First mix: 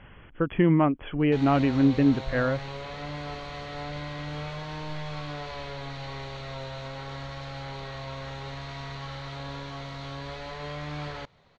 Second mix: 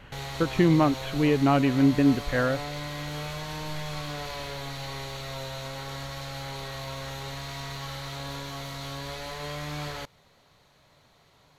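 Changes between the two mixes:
background: entry -1.20 s; master: remove air absorption 160 m

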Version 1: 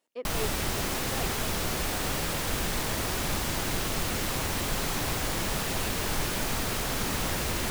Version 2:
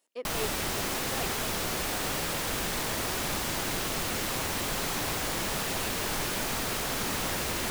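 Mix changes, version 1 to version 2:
speech: add high shelf 6000 Hz +12 dB; master: add low shelf 140 Hz -8 dB

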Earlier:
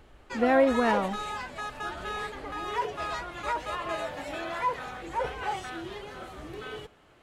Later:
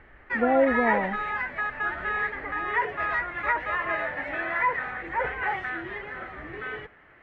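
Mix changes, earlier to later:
speech: add brick-wall FIR low-pass 1000 Hz; master: add synth low-pass 1900 Hz, resonance Q 5.6

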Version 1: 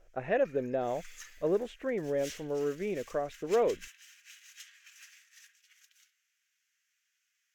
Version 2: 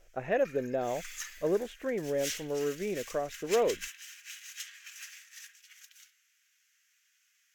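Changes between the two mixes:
background +7.0 dB; master: add high shelf 8000 Hz +4.5 dB

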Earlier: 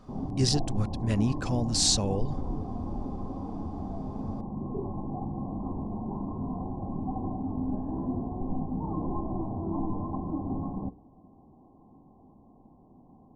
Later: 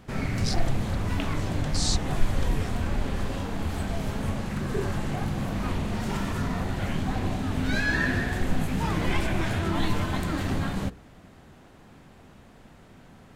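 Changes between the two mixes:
speech: add ladder high-pass 2300 Hz, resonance 30%; background: remove rippled Chebyshev low-pass 1100 Hz, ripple 9 dB

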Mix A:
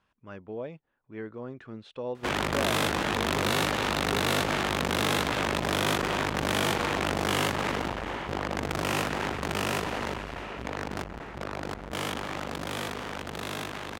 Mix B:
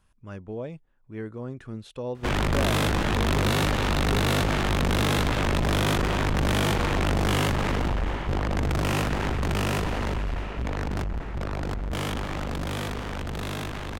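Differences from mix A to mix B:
speech: remove LPF 3800 Hz 12 dB/oct; master: remove HPF 310 Hz 6 dB/oct

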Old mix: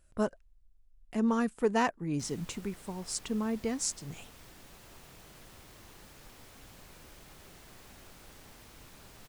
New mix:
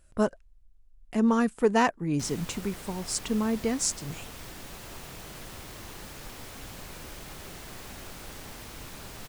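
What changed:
speech +5.0 dB; background +10.5 dB

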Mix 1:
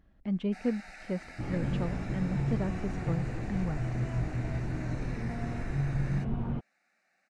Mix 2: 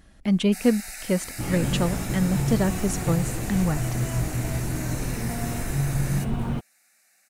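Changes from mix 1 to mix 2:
speech +9.0 dB; second sound +5.0 dB; master: remove tape spacing loss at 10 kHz 32 dB

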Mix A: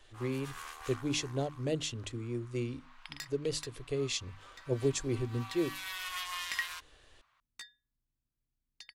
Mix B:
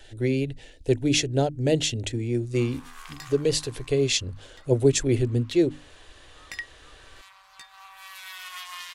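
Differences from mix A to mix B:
speech +11.0 dB; first sound: entry +2.40 s; second sound: add low shelf 260 Hz +10.5 dB

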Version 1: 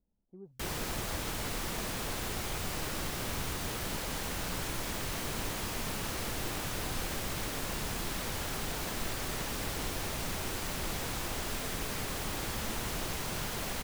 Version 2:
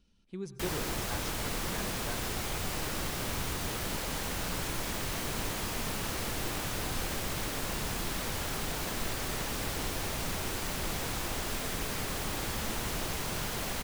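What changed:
speech: remove ladder low-pass 870 Hz, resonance 50%; reverb: on, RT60 0.65 s

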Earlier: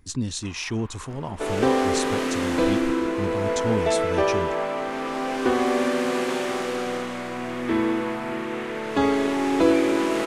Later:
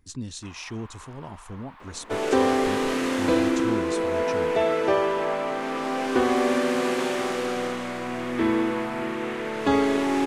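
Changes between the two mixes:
speech -7.0 dB; second sound: entry +0.70 s

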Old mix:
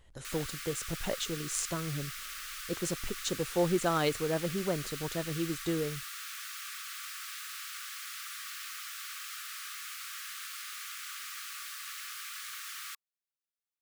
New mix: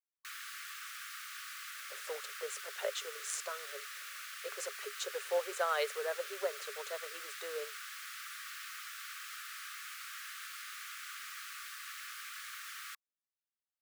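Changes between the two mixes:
speech: entry +1.75 s; master: add rippled Chebyshev high-pass 400 Hz, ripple 6 dB

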